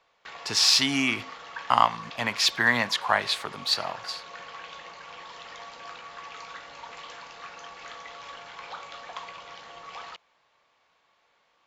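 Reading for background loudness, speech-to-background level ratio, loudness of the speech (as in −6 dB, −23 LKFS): −41.5 LKFS, 18.0 dB, −23.5 LKFS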